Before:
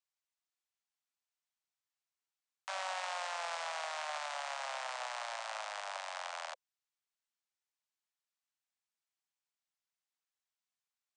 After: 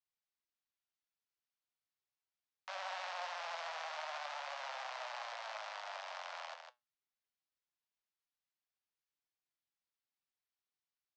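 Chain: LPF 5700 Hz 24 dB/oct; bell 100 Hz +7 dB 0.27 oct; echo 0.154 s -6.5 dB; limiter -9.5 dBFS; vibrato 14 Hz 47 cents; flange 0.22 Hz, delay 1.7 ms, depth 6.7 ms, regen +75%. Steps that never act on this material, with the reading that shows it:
bell 100 Hz: input band starts at 450 Hz; limiter -9.5 dBFS: input peak -25.5 dBFS

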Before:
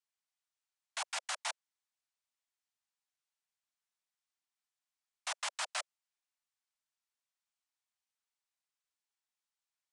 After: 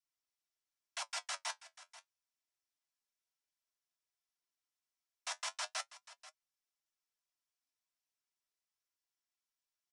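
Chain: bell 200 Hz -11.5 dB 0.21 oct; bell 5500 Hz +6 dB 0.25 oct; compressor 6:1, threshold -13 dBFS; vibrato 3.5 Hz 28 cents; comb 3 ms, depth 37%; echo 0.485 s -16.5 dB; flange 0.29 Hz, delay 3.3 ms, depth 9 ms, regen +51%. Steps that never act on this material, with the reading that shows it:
bell 200 Hz: input band starts at 480 Hz; compressor, threshold -13 dBFS: input peak -22.5 dBFS

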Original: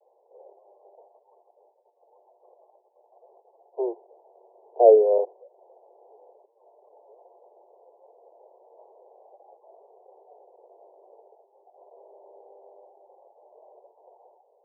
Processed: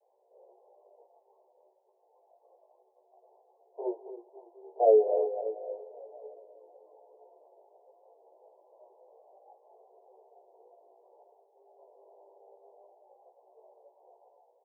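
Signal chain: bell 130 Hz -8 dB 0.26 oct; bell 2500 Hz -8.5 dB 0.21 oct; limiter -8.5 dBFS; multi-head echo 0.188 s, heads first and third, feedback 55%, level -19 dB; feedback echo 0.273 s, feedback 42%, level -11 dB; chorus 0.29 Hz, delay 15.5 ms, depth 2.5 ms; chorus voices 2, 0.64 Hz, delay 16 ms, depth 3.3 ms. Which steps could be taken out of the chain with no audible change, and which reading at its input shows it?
bell 130 Hz: input band starts at 320 Hz; bell 2500 Hz: input band ends at 850 Hz

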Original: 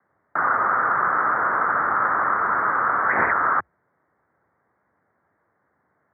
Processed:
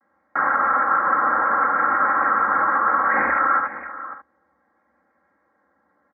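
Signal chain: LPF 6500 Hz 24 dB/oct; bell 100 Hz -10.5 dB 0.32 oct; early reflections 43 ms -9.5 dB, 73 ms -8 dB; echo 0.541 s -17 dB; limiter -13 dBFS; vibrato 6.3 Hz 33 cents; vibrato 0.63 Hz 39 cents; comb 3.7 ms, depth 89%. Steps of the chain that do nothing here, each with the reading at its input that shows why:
LPF 6500 Hz: input band ends at 2300 Hz

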